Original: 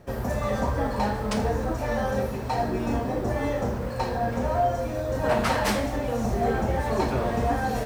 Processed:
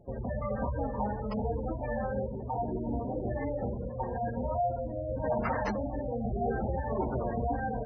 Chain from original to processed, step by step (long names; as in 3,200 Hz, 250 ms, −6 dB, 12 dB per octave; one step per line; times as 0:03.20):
gate on every frequency bin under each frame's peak −15 dB strong
level −6 dB